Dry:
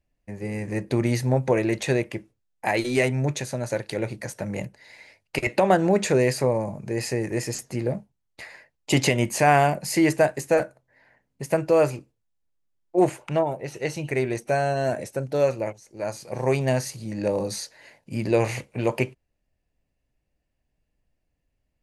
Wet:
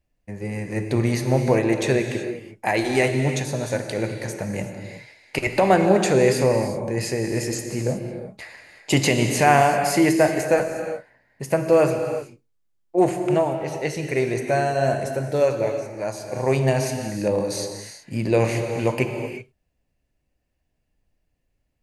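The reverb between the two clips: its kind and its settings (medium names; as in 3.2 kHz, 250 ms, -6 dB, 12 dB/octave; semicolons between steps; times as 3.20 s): gated-style reverb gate 400 ms flat, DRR 5 dB; trim +1.5 dB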